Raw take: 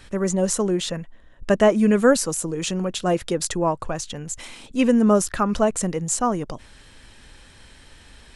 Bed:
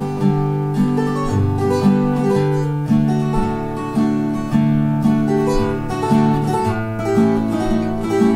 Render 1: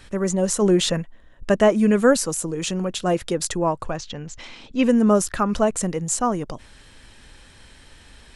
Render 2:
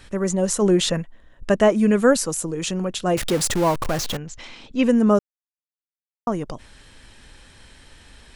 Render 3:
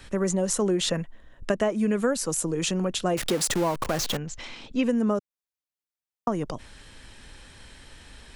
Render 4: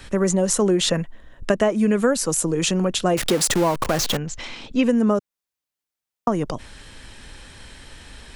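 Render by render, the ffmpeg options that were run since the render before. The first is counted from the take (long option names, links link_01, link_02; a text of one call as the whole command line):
ffmpeg -i in.wav -filter_complex "[0:a]asplit=3[link_01][link_02][link_03];[link_01]afade=type=out:start_time=0.61:duration=0.02[link_04];[link_02]acontrast=42,afade=type=in:start_time=0.61:duration=0.02,afade=type=out:start_time=1.01:duration=0.02[link_05];[link_03]afade=type=in:start_time=1.01:duration=0.02[link_06];[link_04][link_05][link_06]amix=inputs=3:normalize=0,asettb=1/sr,asplit=3[link_07][link_08][link_09];[link_07]atrim=end=3.964[link_10];[link_08]atrim=start=3.96:end=4.83,asetpts=PTS-STARTPTS,afade=type=in:duration=0.004:curve=qsin,afade=type=out:start_time=0.866:duration=0.004:curve=qsin,lowpass=frequency=5700:width=0.5412,lowpass=frequency=5700:width=1.3066[link_11];[link_09]atrim=start=4.826[link_12];[link_10][link_11]acrossfade=duration=0.004:curve1=hsin:curve2=qsin[link_13];[link_13][link_12]acrossfade=duration=0.004:curve1=qsin:curve2=hsin" out.wav
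ffmpeg -i in.wav -filter_complex "[0:a]asettb=1/sr,asplit=3[link_01][link_02][link_03];[link_01]atrim=end=3.174[link_04];[link_02]atrim=start=3.17:end=4.17,asetpts=PTS-STARTPTS,afade=type=in:duration=0.004:curve=qsin,afade=type=out:start_time=0.996:duration=0.004:curve=qsin,aeval=exprs='val(0)+0.5*0.0708*sgn(val(0))':channel_layout=same[link_05];[link_03]atrim=start=4.166[link_06];[link_04][link_05]acrossfade=duration=0.004:curve1=hsin:curve2=qsin[link_07];[link_07][link_06]acrossfade=duration=0.004:curve1=qsin:curve2=hsin,asplit=3[link_08][link_09][link_10];[link_08]atrim=end=5.19,asetpts=PTS-STARTPTS,afade=type=out:start_time=5.186:duration=0.004:curve=hsin[link_11];[link_09]atrim=start=5.19:end=6.27,asetpts=PTS-STARTPTS,volume=0[link_12];[link_10]atrim=start=6.27,asetpts=PTS-STARTPTS,afade=type=in:duration=0.004:curve=hsin[link_13];[link_11][link_12][link_13]concat=n=3:v=0:a=1" out.wav
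ffmpeg -i in.wav -filter_complex "[0:a]acrossover=split=160|1300[link_01][link_02][link_03];[link_01]alimiter=level_in=8dB:limit=-24dB:level=0:latency=1:release=18,volume=-8dB[link_04];[link_04][link_02][link_03]amix=inputs=3:normalize=0,acompressor=threshold=-21dB:ratio=5" out.wav
ffmpeg -i in.wav -af "volume=5.5dB" out.wav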